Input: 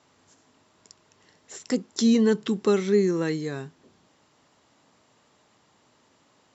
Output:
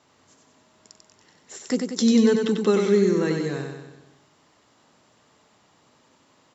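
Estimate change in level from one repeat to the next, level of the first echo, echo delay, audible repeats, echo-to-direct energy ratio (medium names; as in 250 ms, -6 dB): -5.0 dB, -5.0 dB, 94 ms, 6, -3.5 dB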